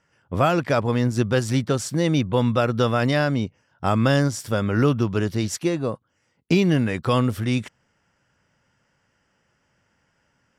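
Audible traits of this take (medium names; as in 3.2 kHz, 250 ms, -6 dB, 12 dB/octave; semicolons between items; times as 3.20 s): noise floor -69 dBFS; spectral tilt -6.0 dB/octave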